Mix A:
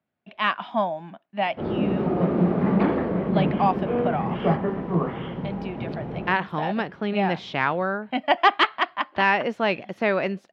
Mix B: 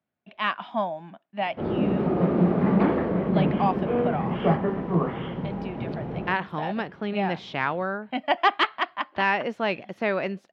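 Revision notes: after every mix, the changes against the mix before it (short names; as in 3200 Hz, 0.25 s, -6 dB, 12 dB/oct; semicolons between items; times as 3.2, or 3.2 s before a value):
speech -3.0 dB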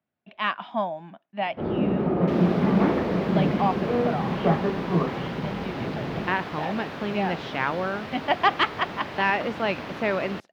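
second sound: unmuted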